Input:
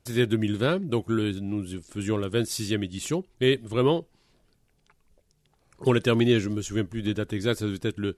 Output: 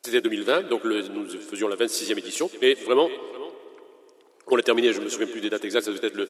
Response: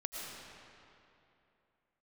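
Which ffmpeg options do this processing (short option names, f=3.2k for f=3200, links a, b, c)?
-filter_complex "[0:a]highpass=f=340:w=0.5412,highpass=f=340:w=1.3066,atempo=1.3,aecho=1:1:437:0.126,asplit=2[a][b];[1:a]atrim=start_sample=2205[c];[b][c]afir=irnorm=-1:irlink=0,volume=-14.5dB[d];[a][d]amix=inputs=2:normalize=0,volume=4dB"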